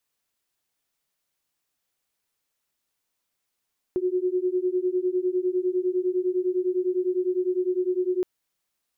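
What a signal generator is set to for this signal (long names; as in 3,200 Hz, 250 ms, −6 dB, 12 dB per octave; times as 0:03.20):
two tones that beat 360 Hz, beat 9.9 Hz, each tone −25 dBFS 4.27 s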